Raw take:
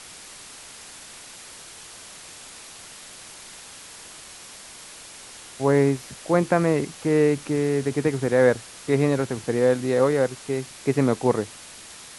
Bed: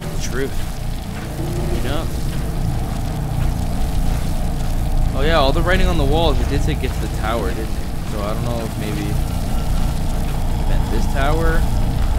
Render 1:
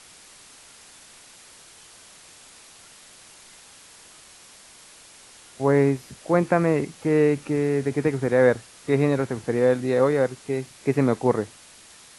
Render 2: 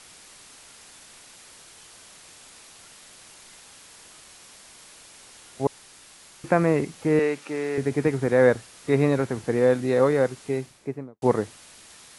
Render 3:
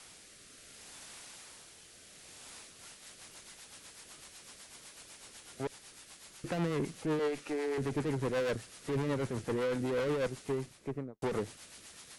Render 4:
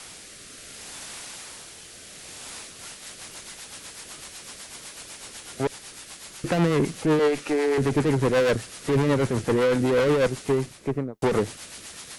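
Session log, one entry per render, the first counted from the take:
noise print and reduce 6 dB
5.67–6.44 room tone; 7.19–7.78 weighting filter A; 10.45–11.22 studio fade out
tube stage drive 28 dB, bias 0.4; rotary speaker horn 0.65 Hz, later 8 Hz, at 2.39
gain +11.5 dB

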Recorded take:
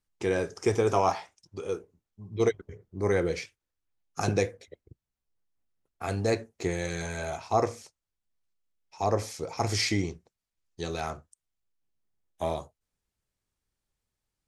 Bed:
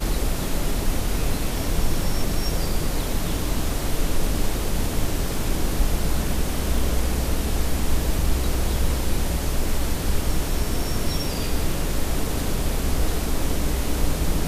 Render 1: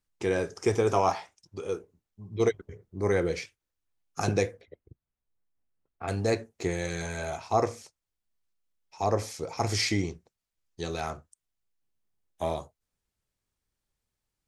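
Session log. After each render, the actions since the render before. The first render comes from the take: 4.61–6.08 air absorption 350 m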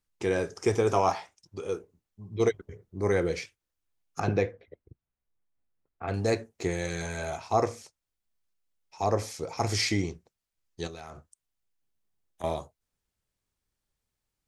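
4.2–6.14 LPF 2900 Hz; 10.87–12.44 compressor 12:1, threshold -38 dBFS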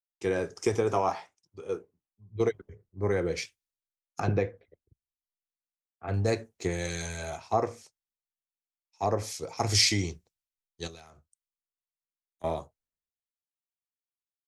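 compressor 6:1, threshold -25 dBFS, peak gain reduction 7 dB; three-band expander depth 100%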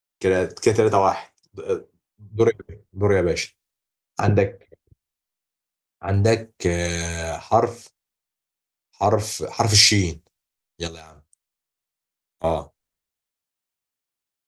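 gain +9 dB; limiter -1 dBFS, peak gain reduction 1 dB

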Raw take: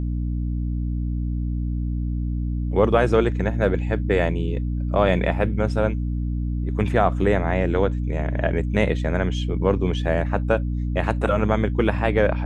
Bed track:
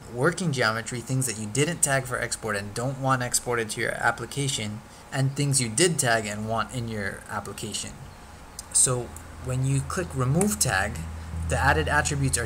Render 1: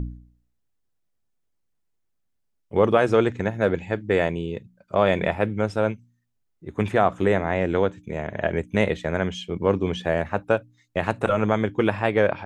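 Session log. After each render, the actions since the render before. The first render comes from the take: de-hum 60 Hz, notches 5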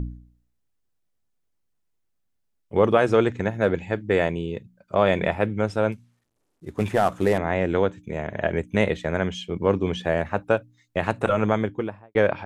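5.92–7.38 CVSD 64 kbps; 11.48–12.15 studio fade out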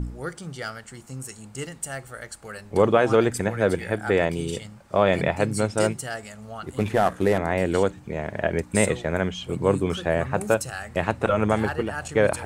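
add bed track -10 dB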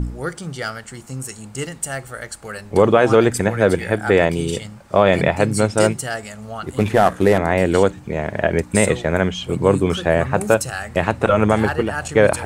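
gain +6.5 dB; limiter -1 dBFS, peak gain reduction 3 dB

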